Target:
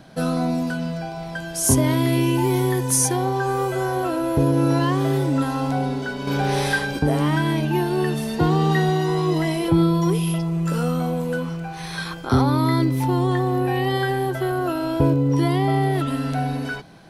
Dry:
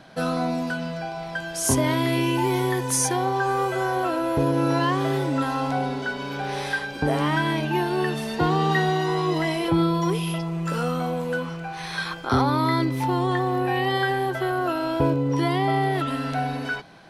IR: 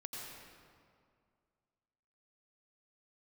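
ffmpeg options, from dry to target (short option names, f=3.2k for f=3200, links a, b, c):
-filter_complex "[0:a]lowshelf=f=460:g=10,asettb=1/sr,asplit=3[a][b][c];[a]atrim=end=6.274[d];[b]atrim=start=6.27:end=6.99,asetpts=PTS-STARTPTS,afade=t=in:d=0.004:c=qsin,afade=t=out:st=0.716:d=0.004:c=qsin,acontrast=56[e];[c]atrim=start=6.986[f];[d][e]acrossfade=d=0.004:c1=hsin:c2=qsin[g];[g][f]acrossfade=d=0.004:c1=qsin:c2=hsin,highshelf=f=6.1k:g=11,volume=-3.5dB"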